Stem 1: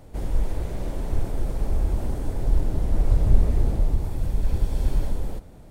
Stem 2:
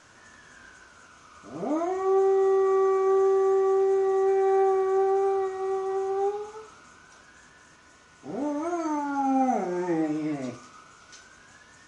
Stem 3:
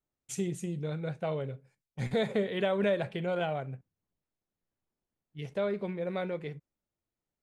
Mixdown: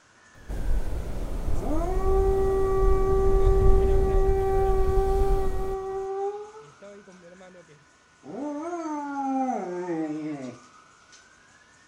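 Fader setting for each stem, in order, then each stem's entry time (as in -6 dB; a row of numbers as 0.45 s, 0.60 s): -3.0 dB, -3.0 dB, -15.0 dB; 0.35 s, 0.00 s, 1.25 s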